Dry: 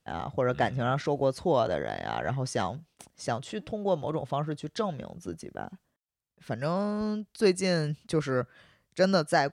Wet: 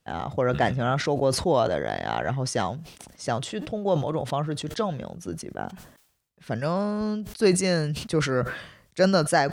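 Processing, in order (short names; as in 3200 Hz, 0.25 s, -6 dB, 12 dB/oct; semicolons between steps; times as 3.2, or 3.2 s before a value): sustainer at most 83 dB/s; gain +3 dB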